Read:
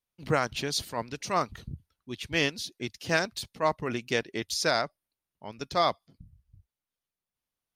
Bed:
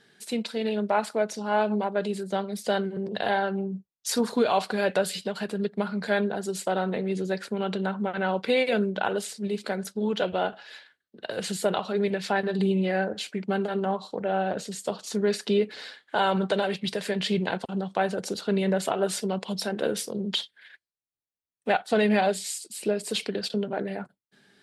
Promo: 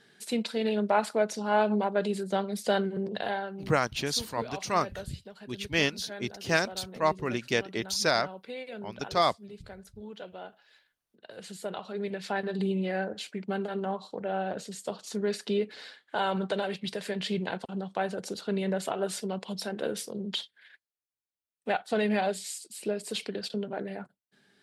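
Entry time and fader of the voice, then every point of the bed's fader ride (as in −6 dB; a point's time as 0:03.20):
3.40 s, +0.5 dB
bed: 0:03.02 −0.5 dB
0:03.82 −16.5 dB
0:10.98 −16.5 dB
0:12.43 −5 dB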